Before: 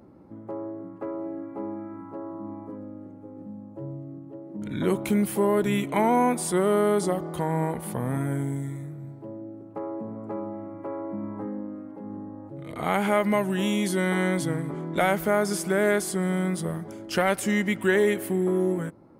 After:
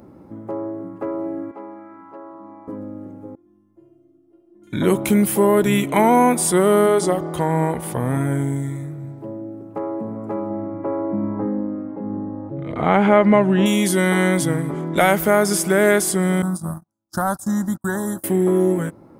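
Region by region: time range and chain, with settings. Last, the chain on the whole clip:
0:01.51–0:02.68: high-pass filter 1,100 Hz 6 dB per octave + high-frequency loss of the air 110 metres
0:03.35–0:04.73: tuned comb filter 350 Hz, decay 0.41 s, mix 100% + flutter between parallel walls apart 11.7 metres, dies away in 1 s
0:06.86–0:09.18: parametric band 13,000 Hz −7 dB 0.81 octaves + notch filter 200 Hz, Q 5.3
0:10.50–0:13.66: low-pass filter 3,500 Hz + tilt shelving filter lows +3.5 dB, about 1,300 Hz
0:16.42–0:18.24: noise gate −31 dBFS, range −44 dB + Butterworth band-reject 2,400 Hz, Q 0.93 + phaser with its sweep stopped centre 1,100 Hz, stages 4
whole clip: high-shelf EQ 6,600 Hz +5.5 dB; notch filter 4,300 Hz, Q 18; level +7 dB

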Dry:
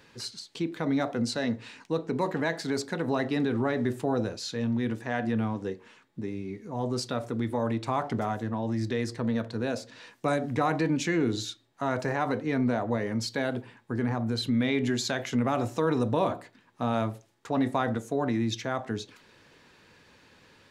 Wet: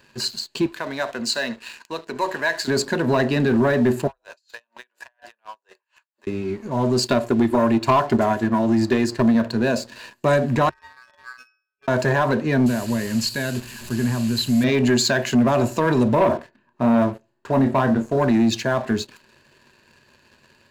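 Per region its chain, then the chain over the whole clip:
0:00.66–0:02.68: high-pass filter 1,200 Hz 6 dB per octave + single-tap delay 75 ms −18.5 dB
0:04.07–0:06.27: high-pass filter 690 Hz 24 dB per octave + downward compressor 5 to 1, threshold −40 dBFS + tremolo with a sine in dB 4.2 Hz, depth 32 dB
0:07.03–0:09.35: comb filter 2.9 ms, depth 33% + transient designer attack +7 dB, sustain −2 dB
0:10.69–0:11.88: parametric band 310 Hz −10.5 dB 1.8 octaves + resonances in every octave B, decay 0.46 s + ring modulation 1,400 Hz
0:12.66–0:14.64: linear delta modulator 64 kbit/s, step −36.5 dBFS + parametric band 700 Hz −11 dB 2.8 octaves
0:16.15–0:18.17: low-pass filter 1,400 Hz 6 dB per octave + double-tracking delay 30 ms −8 dB
whole clip: EQ curve with evenly spaced ripples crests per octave 1.4, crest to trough 9 dB; leveller curve on the samples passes 2; level +2 dB

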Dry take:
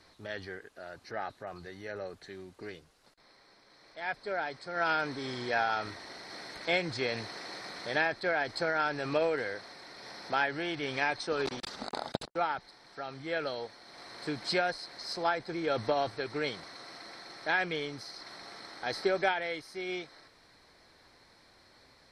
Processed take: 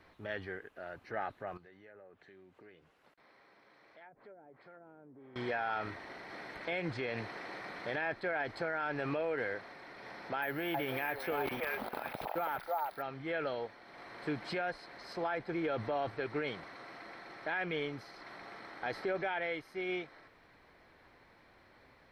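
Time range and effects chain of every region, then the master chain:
0:01.57–0:05.36: treble cut that deepens with the level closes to 380 Hz, closed at −30 dBFS + downward compressor 3 to 1, threshold −57 dBFS + high-pass filter 160 Hz 6 dB per octave
0:10.42–0:13.02: echo through a band-pass that steps 321 ms, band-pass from 760 Hz, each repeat 1.4 octaves, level −0.5 dB + bad sample-rate conversion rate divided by 3×, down filtered, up hold
whole clip: flat-topped bell 6,400 Hz −14 dB; brickwall limiter −26 dBFS

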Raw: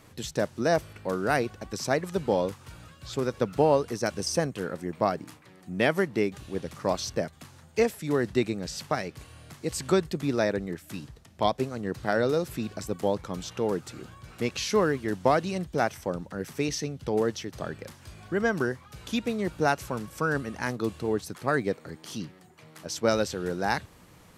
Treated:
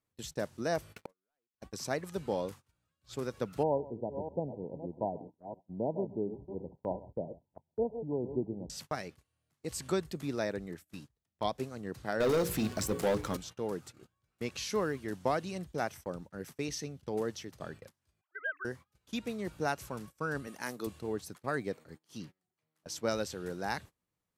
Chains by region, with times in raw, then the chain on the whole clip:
0:00.96–0:01.61: low-shelf EQ 150 Hz −11.5 dB + leveller curve on the samples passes 3 + gate with flip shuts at −19 dBFS, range −37 dB
0:03.63–0:08.70: delay that plays each chunk backwards 329 ms, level −10 dB + linear-phase brick-wall low-pass 1,000 Hz + single-tap delay 135 ms −19 dB
0:12.20–0:13.37: mains-hum notches 60/120/180/240/300/360/420/480/540 Hz + leveller curve on the samples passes 3
0:18.21–0:18.65: three sine waves on the formant tracks + high-pass filter 760 Hz 24 dB per octave
0:20.47–0:20.87: high-pass filter 200 Hz + high-shelf EQ 8,500 Hz +11.5 dB + upward compression, threshold −36 dBFS
whole clip: noise gate −39 dBFS, range −26 dB; high-shelf EQ 7,700 Hz +5.5 dB; level −8.5 dB

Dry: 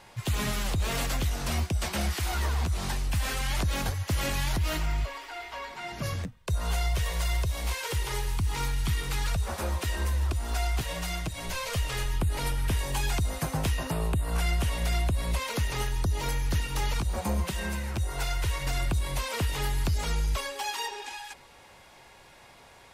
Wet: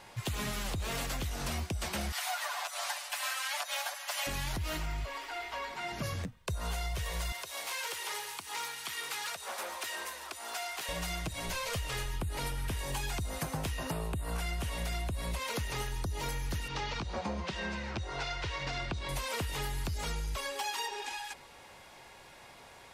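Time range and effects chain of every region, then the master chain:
0:02.12–0:04.27: elliptic high-pass filter 620 Hz, stop band 50 dB + comb filter 6.9 ms, depth 100%
0:07.32–0:10.89: high-pass filter 610 Hz + saturating transformer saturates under 3,200 Hz
0:16.68–0:19.09: low-pass filter 5,500 Hz 24 dB per octave + low-shelf EQ 73 Hz −11.5 dB
whole clip: low-shelf EQ 110 Hz −4.5 dB; downward compressor, threshold −32 dBFS

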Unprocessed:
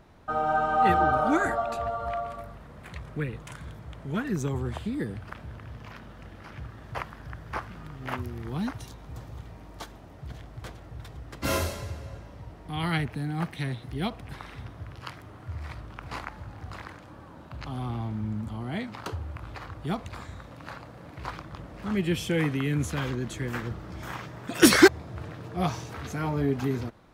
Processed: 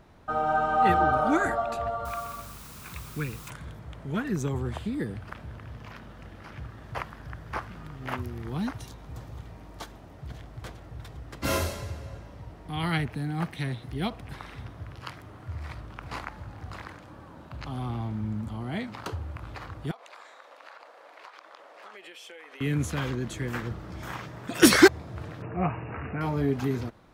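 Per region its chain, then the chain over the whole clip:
0:02.05–0:03.50: low-shelf EQ 330 Hz −5 dB + comb filter 0.8 ms, depth 55% + bit-depth reduction 8 bits, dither triangular
0:19.91–0:22.61: high-pass filter 510 Hz 24 dB per octave + high-shelf EQ 8,000 Hz −9 dB + downward compressor 16 to 1, threshold −42 dBFS
0:25.42–0:26.21: upward compression, threshold −30 dBFS + linear-phase brick-wall low-pass 2,900 Hz
whole clip: no processing

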